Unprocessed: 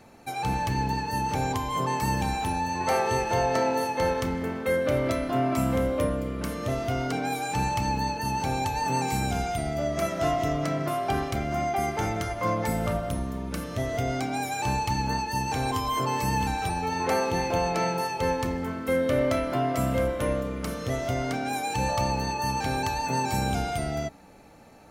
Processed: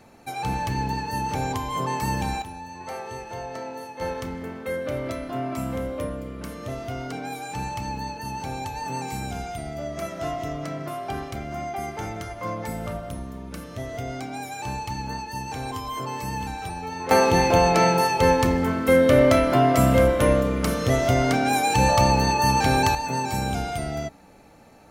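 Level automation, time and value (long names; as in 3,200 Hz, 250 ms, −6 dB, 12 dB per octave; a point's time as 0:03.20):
+0.5 dB
from 0:02.42 −10 dB
from 0:04.01 −4 dB
from 0:17.11 +8 dB
from 0:22.95 +0.5 dB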